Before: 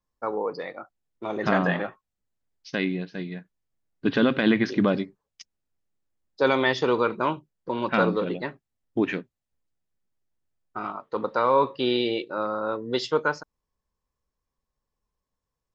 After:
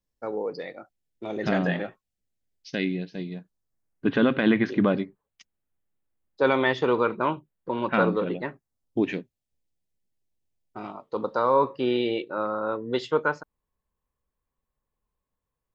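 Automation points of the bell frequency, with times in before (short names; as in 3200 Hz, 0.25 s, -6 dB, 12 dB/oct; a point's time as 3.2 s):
bell -12 dB 0.79 oct
2.99 s 1100 Hz
4.2 s 5300 Hz
8.39 s 5300 Hz
9.05 s 1300 Hz
10.9 s 1300 Hz
12.09 s 5300 Hz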